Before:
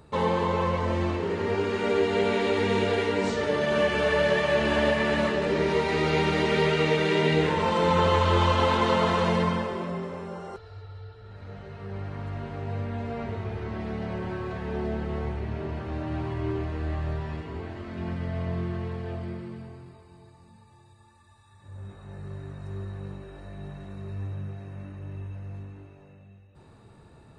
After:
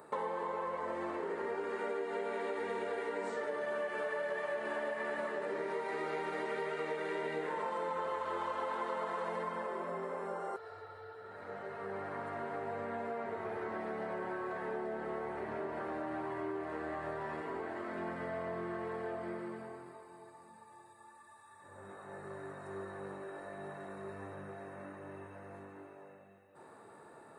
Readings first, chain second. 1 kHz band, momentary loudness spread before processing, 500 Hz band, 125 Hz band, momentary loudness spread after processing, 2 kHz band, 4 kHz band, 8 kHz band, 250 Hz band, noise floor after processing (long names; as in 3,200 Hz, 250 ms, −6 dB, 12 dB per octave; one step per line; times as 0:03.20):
−9.5 dB, 18 LU, −11.0 dB, −24.0 dB, 16 LU, −11.0 dB, −21.5 dB, below −10 dB, −14.5 dB, −57 dBFS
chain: high-pass filter 420 Hz 12 dB per octave
flat-topped bell 4,000 Hz −11.5 dB
downward compressor, threshold −40 dBFS, peak gain reduction 18 dB
level +4 dB